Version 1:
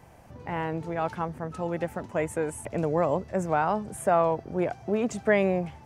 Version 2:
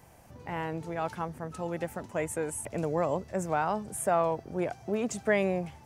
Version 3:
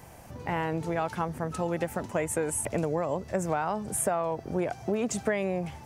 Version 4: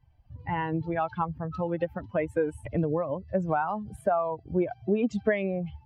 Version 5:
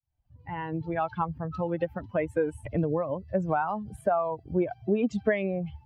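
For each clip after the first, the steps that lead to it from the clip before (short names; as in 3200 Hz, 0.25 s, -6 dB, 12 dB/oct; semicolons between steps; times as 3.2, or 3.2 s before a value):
high shelf 4900 Hz +10 dB; gain -4 dB
compressor 10:1, threshold -31 dBFS, peak gain reduction 11 dB; gain +7 dB
per-bin expansion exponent 2; air absorption 330 m; gain +7 dB
opening faded in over 1.04 s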